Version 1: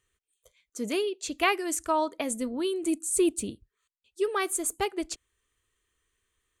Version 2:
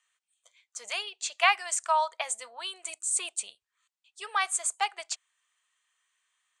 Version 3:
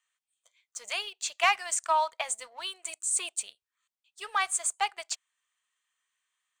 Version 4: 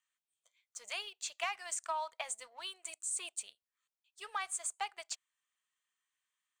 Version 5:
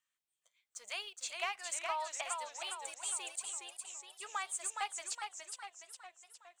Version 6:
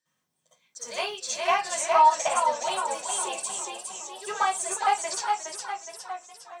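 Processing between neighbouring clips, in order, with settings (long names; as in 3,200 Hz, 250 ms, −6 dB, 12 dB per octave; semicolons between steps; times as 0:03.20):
elliptic band-pass filter 750–8,400 Hz, stop band 40 dB; level +3.5 dB
leveller curve on the samples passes 1; level −3.5 dB
downward compressor 6 to 1, threshold −26 dBFS, peak gain reduction 8 dB; level −7 dB
feedback echo with a swinging delay time 413 ms, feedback 53%, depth 145 cents, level −4.5 dB; level −1 dB
convolution reverb RT60 0.20 s, pre-delay 54 ms, DRR −12 dB; level −3.5 dB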